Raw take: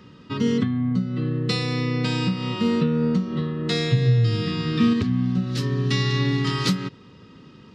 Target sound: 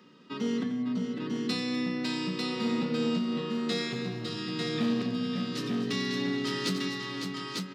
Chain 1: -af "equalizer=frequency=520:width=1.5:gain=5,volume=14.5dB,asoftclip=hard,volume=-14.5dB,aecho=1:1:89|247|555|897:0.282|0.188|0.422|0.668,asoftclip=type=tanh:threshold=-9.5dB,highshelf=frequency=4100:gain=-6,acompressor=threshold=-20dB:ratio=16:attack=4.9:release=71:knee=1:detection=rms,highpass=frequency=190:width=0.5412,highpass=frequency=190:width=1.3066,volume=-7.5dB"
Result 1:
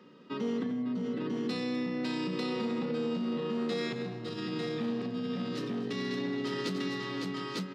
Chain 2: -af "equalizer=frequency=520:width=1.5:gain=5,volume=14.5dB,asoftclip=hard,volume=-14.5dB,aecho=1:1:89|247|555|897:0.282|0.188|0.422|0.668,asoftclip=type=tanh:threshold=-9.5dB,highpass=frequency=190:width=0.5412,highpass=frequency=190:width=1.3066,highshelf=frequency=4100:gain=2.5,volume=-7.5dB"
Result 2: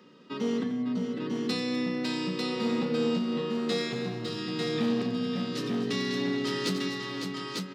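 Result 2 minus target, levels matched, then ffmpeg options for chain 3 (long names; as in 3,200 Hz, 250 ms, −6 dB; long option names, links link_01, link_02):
500 Hz band +3.0 dB
-af "volume=14.5dB,asoftclip=hard,volume=-14.5dB,aecho=1:1:89|247|555|897:0.282|0.188|0.422|0.668,asoftclip=type=tanh:threshold=-9.5dB,highpass=frequency=190:width=0.5412,highpass=frequency=190:width=1.3066,highshelf=frequency=4100:gain=2.5,volume=-7.5dB"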